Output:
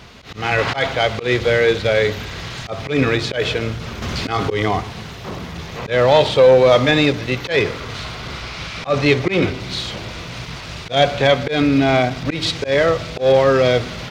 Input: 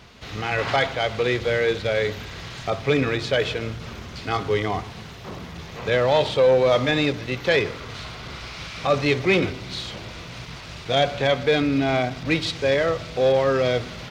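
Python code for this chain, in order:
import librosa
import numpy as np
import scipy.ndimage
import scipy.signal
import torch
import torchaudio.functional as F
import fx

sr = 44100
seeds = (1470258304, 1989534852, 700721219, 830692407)

y = fx.high_shelf(x, sr, hz=6200.0, db=-4.0, at=(8.4, 9.6))
y = fx.auto_swell(y, sr, attack_ms=130.0)
y = fx.env_flatten(y, sr, amount_pct=50, at=(4.02, 4.69))
y = F.gain(torch.from_numpy(y), 6.5).numpy()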